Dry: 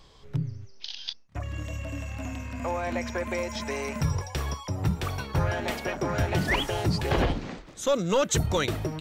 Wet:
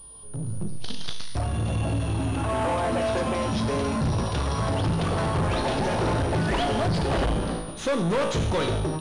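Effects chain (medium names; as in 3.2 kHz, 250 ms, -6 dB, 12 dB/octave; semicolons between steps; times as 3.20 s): in parallel at -1 dB: compression, threshold -35 dBFS, peak gain reduction 14 dB; on the sum: ever faster or slower copies 341 ms, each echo +4 st, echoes 2, each echo -6 dB; peaking EQ 2.1 kHz -14.5 dB 0.52 oct; feedback comb 55 Hz, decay 0.79 s, harmonics all, mix 80%; saturation -36.5 dBFS, distortion -8 dB; level rider gain up to 11 dB; class-D stage that switches slowly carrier 9.6 kHz; trim +4.5 dB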